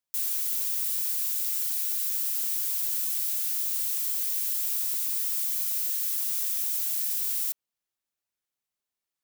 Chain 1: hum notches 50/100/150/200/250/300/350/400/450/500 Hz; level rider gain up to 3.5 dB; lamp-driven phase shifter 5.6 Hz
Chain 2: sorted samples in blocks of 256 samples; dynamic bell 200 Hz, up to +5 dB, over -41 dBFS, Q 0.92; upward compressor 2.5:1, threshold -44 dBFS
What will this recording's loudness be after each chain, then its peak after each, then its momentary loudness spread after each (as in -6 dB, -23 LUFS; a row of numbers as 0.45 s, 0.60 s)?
-24.0 LUFS, -26.0 LUFS; -12.5 dBFS, -15.0 dBFS; 1 LU, 0 LU